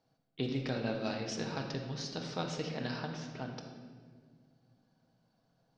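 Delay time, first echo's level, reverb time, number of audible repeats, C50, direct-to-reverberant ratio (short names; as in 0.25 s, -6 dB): none, none, 1.7 s, none, 4.5 dB, 2.0 dB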